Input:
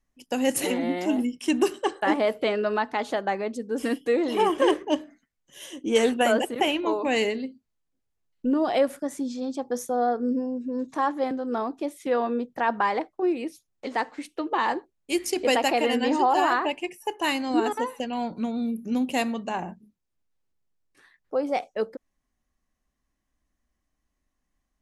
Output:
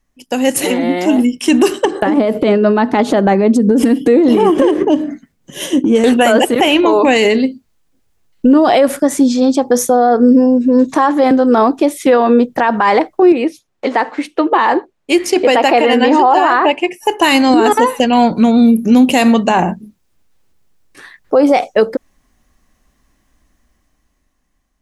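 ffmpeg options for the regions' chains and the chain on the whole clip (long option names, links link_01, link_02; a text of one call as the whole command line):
ffmpeg -i in.wav -filter_complex "[0:a]asettb=1/sr,asplit=3[link_01][link_02][link_03];[link_01]atrim=end=1.854[link_04];[link_02]atrim=start=1.85:end=6.04,asetpts=PTS-STARTPTS,afade=type=in:duration=0.004:curve=qsin,afade=type=out:start_time=4.186:duration=0.004:curve=qsin,equalizer=frequency=200:width=0.49:gain=14,acompressor=threshold=-24dB:ratio=16:attack=3.2:release=140:knee=1:detection=peak,tremolo=f=6.1:d=0.37[link_05];[link_03]atrim=start=6.036[link_06];[link_04][link_05]acrossfade=duration=0.004:curve1=hsin:curve2=qsin[link_07];[link_07][link_06]acrossfade=duration=0.004:curve1=qsin:curve2=hsin,asettb=1/sr,asplit=3[link_08][link_09][link_10];[link_08]atrim=end=13.324[link_11];[link_09]atrim=start=13.32:end=17.03,asetpts=PTS-STARTPTS,afade=type=in:duration=0.004:curve=qsin,afade=type=out:start_time=3.706:duration=0.004:curve=qsin,lowpass=frequency=2200:poles=1,lowshelf=frequency=170:gain=-11.5[link_12];[link_10]atrim=start=17.026[link_13];[link_11][link_12]acrossfade=duration=0.004:curve1=hsin:curve2=qsin[link_14];[link_14][link_13]acrossfade=duration=0.004:curve1=qsin:curve2=hsin,dynaudnorm=framelen=320:gausssize=9:maxgain=11.5dB,alimiter=level_in=11dB:limit=-1dB:release=50:level=0:latency=1,volume=-1dB" out.wav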